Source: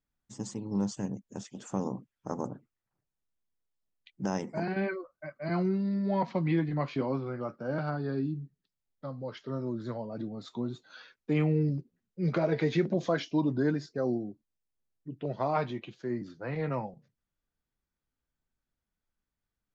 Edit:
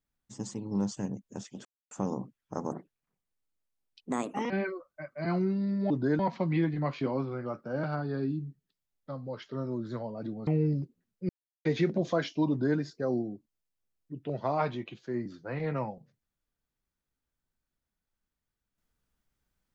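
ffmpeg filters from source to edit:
ffmpeg -i in.wav -filter_complex "[0:a]asplit=9[link_01][link_02][link_03][link_04][link_05][link_06][link_07][link_08][link_09];[link_01]atrim=end=1.65,asetpts=PTS-STARTPTS,afade=type=out:start_time=1.646:duration=0.004:curve=hsin,apad=pad_dur=0.26[link_10];[link_02]atrim=start=1.65:end=2.464,asetpts=PTS-STARTPTS,afade=type=in:duration=0.004:curve=hsin[link_11];[link_03]atrim=start=2.46:end=4.74,asetpts=PTS-STARTPTS,asetrate=56448,aresample=44100,atrim=end_sample=78553,asetpts=PTS-STARTPTS[link_12];[link_04]atrim=start=4.736:end=6.142[link_13];[link_05]atrim=start=13.448:end=13.742[link_14];[link_06]atrim=start=6.138:end=10.422[link_15];[link_07]atrim=start=11.428:end=12.25,asetpts=PTS-STARTPTS,afade=type=out:start_time=0.818:duration=0.004:curve=hsin[link_16];[link_08]atrim=start=12.25:end=12.61,asetpts=PTS-STARTPTS,volume=0[link_17];[link_09]atrim=start=12.61,asetpts=PTS-STARTPTS,afade=type=in:duration=0.004:curve=hsin[link_18];[link_10][link_11]concat=n=2:v=0:a=1[link_19];[link_19][link_12]acrossfade=duration=0.004:curve1=hsin:curve2=hsin[link_20];[link_20][link_13]acrossfade=duration=0.004:curve1=hsin:curve2=hsin[link_21];[link_21][link_14]acrossfade=duration=0.004:curve1=hsin:curve2=hsin[link_22];[link_22][link_15]acrossfade=duration=0.004:curve1=hsin:curve2=hsin[link_23];[link_16][link_17][link_18]concat=n=3:v=0:a=1[link_24];[link_23][link_24]acrossfade=duration=0.004:curve1=hsin:curve2=hsin" out.wav

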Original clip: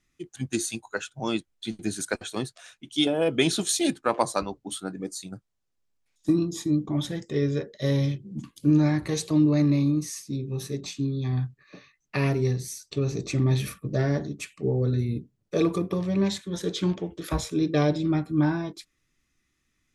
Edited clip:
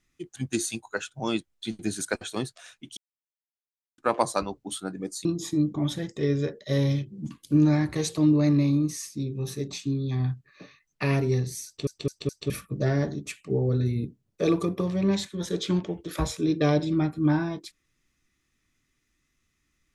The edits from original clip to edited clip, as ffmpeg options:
ffmpeg -i in.wav -filter_complex "[0:a]asplit=8[link_01][link_02][link_03][link_04][link_05][link_06][link_07][link_08];[link_01]atrim=end=2.97,asetpts=PTS-STARTPTS,afade=type=out:start_time=2.966:duration=0.004:curve=hsin[link_09];[link_02]atrim=start=2.97:end=3.98,asetpts=PTS-STARTPTS,volume=0[link_10];[link_03]atrim=start=3.98:end=5.252,asetpts=PTS-STARTPTS,afade=type=in:duration=0.004:curve=hsin[link_11];[link_04]atrim=start=6.378:end=13.002[link_12];[link_05]atrim=start=12.788:end=13.002[link_13];[link_06]atrim=start=12.788:end=13.002[link_14];[link_07]atrim=start=12.788:end=13.002[link_15];[link_08]atrim=start=13.628[link_16];[link_09][link_10][link_11]concat=n=3:v=0:a=1[link_17];[link_17][link_12]acrossfade=duration=0.004:curve1=hsin:curve2=hsin[link_18];[link_18][link_13]acrossfade=duration=0.004:curve1=hsin:curve2=hsin[link_19];[link_19][link_14]acrossfade=duration=0.004:curve1=hsin:curve2=hsin[link_20];[link_20][link_15]acrossfade=duration=0.004:curve1=hsin:curve2=hsin[link_21];[link_21][link_16]acrossfade=duration=0.004:curve1=hsin:curve2=hsin" out.wav

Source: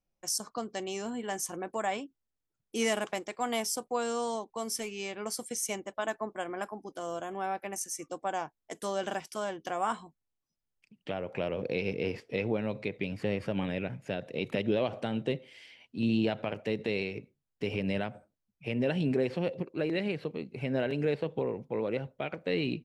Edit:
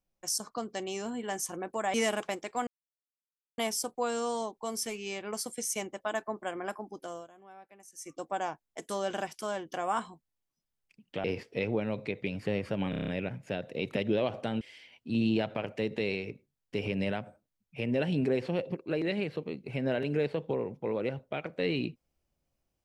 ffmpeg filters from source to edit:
ffmpeg -i in.wav -filter_complex "[0:a]asplit=13[link_01][link_02][link_03][link_04][link_05][link_06][link_07][link_08][link_09][link_10][link_11][link_12][link_13];[link_01]atrim=end=1.942[link_14];[link_02]atrim=start=2.778:end=3.51,asetpts=PTS-STARTPTS,afade=type=out:start_time=0.728:duration=0.004:curve=hsin,apad=pad_dur=0.91[link_15];[link_03]atrim=start=3.51:end=7.21,asetpts=PTS-STARTPTS,afade=type=in:duration=0.004:curve=hsin,afade=type=out:start_time=3.33:duration=0.37:curve=qsin:silence=0.125893[link_16];[link_04]atrim=start=7.21:end=7.85,asetpts=PTS-STARTPTS,volume=-18dB[link_17];[link_05]atrim=start=7.85:end=11.172,asetpts=PTS-STARTPTS,afade=type=in:duration=0.37:curve=qsin:silence=0.125893[link_18];[link_06]atrim=start=12.008:end=13.702[link_19];[link_07]atrim=start=13.668:end=13.702[link_20];[link_08]atrim=start=13.668:end=13.702[link_21];[link_09]atrim=start=13.668:end=13.702[link_22];[link_10]atrim=start=13.668:end=13.702[link_23];[link_11]atrim=start=13.668:end=13.702[link_24];[link_12]atrim=start=13.668:end=15.202[link_25];[link_13]atrim=start=15.488[link_26];[link_15][link_16][link_17][link_18]concat=n=4:v=0:a=1[link_27];[link_14][link_27]acrossfade=duration=0.004:curve1=hsin:curve2=hsin[link_28];[link_28][link_19]acrossfade=duration=0.004:curve1=hsin:curve2=hsin[link_29];[link_29][link_20]acrossfade=duration=0.004:curve1=hsin:curve2=hsin[link_30];[link_30][link_21]acrossfade=duration=0.004:curve1=hsin:curve2=hsin[link_31];[link_31][link_22]acrossfade=duration=0.004:curve1=hsin:curve2=hsin[link_32];[link_32][link_23]acrossfade=duration=0.004:curve1=hsin:curve2=hsin[link_33];[link_33][link_24]acrossfade=duration=0.004:curve1=hsin:curve2=hsin[link_34];[link_34][link_25]acrossfade=duration=0.004:curve1=hsin:curve2=hsin[link_35];[link_35][link_26]acrossfade=duration=0.004:curve1=hsin:curve2=hsin" out.wav

